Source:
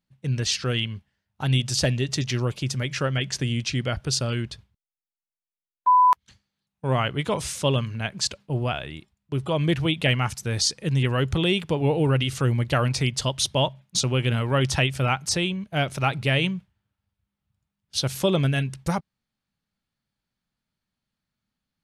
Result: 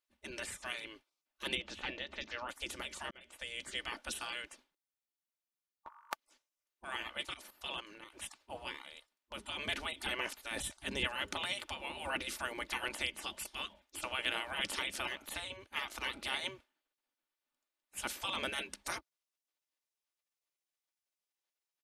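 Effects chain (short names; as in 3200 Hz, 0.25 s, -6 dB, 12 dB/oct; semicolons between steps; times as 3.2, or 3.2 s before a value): spectral gate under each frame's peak -20 dB weak; 10.51–11.07 low shelf 490 Hz +7.5 dB; comb 3.4 ms, depth 33%; 1.55–2.49 air absorption 210 m; 3.11–3.67 fade in; 7.26–8.1 level quantiser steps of 13 dB; gain -2 dB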